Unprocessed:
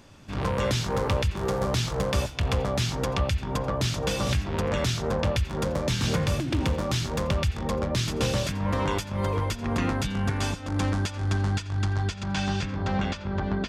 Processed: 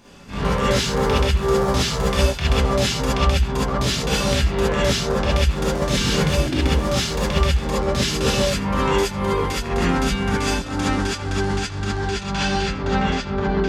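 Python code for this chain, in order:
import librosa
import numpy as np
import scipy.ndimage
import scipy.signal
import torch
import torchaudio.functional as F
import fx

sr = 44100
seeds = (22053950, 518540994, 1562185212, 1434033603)

y = fx.peak_eq(x, sr, hz=100.0, db=-8.0, octaves=0.42)
y = fx.rev_gated(y, sr, seeds[0], gate_ms=90, shape='rising', drr_db=-7.5)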